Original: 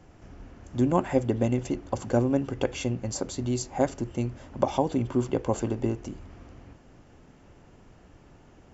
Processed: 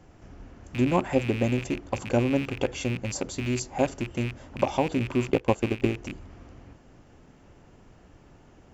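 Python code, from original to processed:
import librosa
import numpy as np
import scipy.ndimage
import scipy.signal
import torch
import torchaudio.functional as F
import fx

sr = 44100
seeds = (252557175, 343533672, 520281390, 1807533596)

y = fx.rattle_buzz(x, sr, strikes_db=-35.0, level_db=-25.0)
y = fx.transient(y, sr, attack_db=5, sustain_db=-10, at=(5.3, 5.93), fade=0.02)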